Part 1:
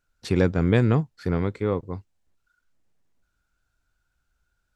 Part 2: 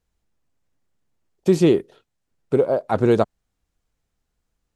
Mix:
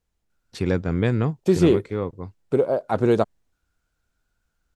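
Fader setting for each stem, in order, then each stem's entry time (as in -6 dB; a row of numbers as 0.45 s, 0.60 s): -2.0 dB, -2.0 dB; 0.30 s, 0.00 s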